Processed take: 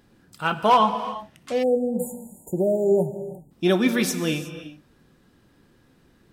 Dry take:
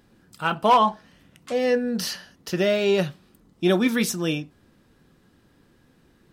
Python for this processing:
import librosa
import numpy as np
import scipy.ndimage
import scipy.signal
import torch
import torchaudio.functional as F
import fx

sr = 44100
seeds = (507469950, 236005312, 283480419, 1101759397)

y = fx.rev_gated(x, sr, seeds[0], gate_ms=390, shape='flat', drr_db=9.5)
y = fx.spec_erase(y, sr, start_s=1.63, length_s=1.88, low_hz=960.0, high_hz=6800.0)